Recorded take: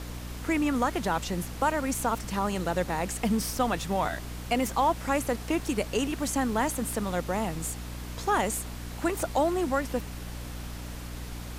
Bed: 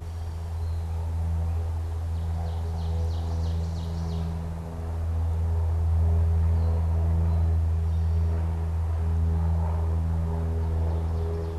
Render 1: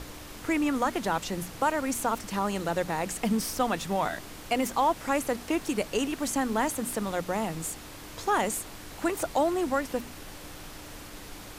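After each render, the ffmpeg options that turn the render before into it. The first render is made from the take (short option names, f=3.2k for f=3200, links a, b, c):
-af "bandreject=f=60:t=h:w=6,bandreject=f=120:t=h:w=6,bandreject=f=180:t=h:w=6,bandreject=f=240:t=h:w=6"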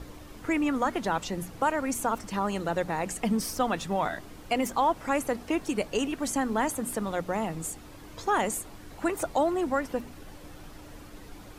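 -af "afftdn=nr=9:nf=-44"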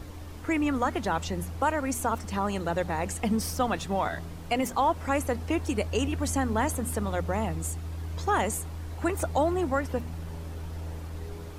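-filter_complex "[1:a]volume=-11dB[a];[0:a][a]amix=inputs=2:normalize=0"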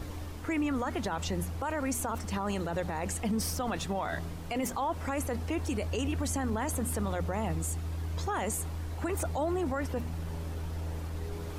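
-af "areverse,acompressor=mode=upward:threshold=-33dB:ratio=2.5,areverse,alimiter=limit=-23.5dB:level=0:latency=1:release=18"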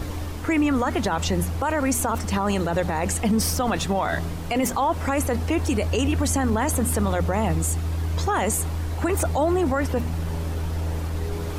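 -af "volume=9.5dB"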